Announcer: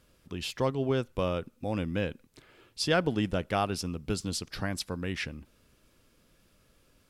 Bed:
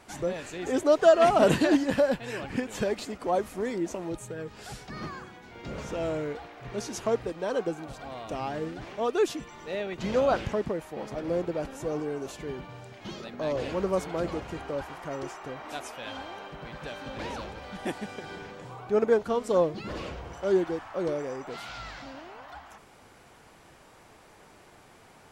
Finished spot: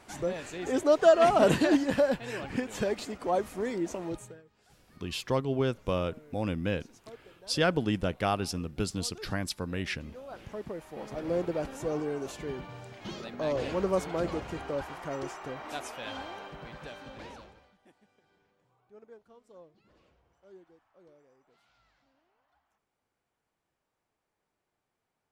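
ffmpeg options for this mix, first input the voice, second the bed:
-filter_complex "[0:a]adelay=4700,volume=0dB[a];[1:a]volume=20dB,afade=t=out:st=4.12:d=0.3:silence=0.0944061,afade=t=in:st=10.28:d=1.15:silence=0.0841395,afade=t=out:st=16.23:d=1.53:silence=0.0354813[b];[a][b]amix=inputs=2:normalize=0"

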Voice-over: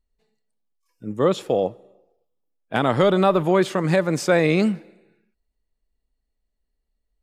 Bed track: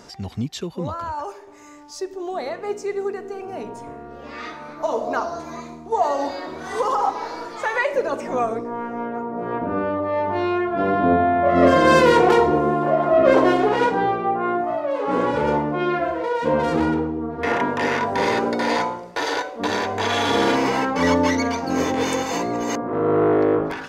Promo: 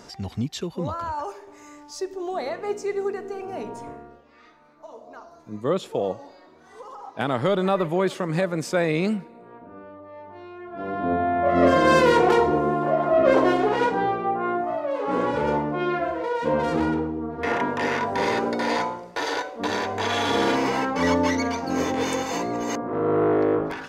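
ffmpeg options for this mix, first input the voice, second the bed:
-filter_complex "[0:a]adelay=4450,volume=-4.5dB[a];[1:a]volume=15.5dB,afade=t=out:st=3.86:d=0.38:silence=0.11885,afade=t=in:st=10.57:d=0.91:silence=0.149624[b];[a][b]amix=inputs=2:normalize=0"

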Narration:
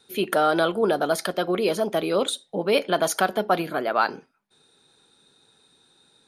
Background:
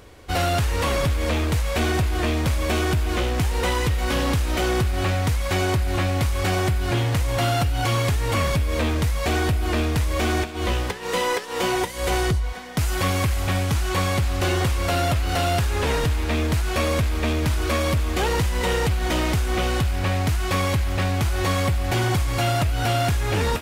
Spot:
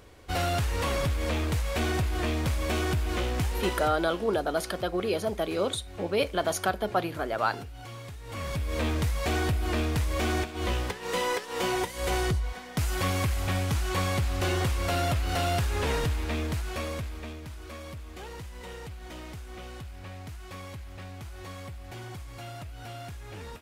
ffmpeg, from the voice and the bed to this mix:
-filter_complex "[0:a]adelay=3450,volume=-5.5dB[a];[1:a]volume=9dB,afade=t=out:st=3.44:d=0.67:silence=0.188365,afade=t=in:st=8.24:d=0.62:silence=0.177828,afade=t=out:st=15.95:d=1.47:silence=0.199526[b];[a][b]amix=inputs=2:normalize=0"

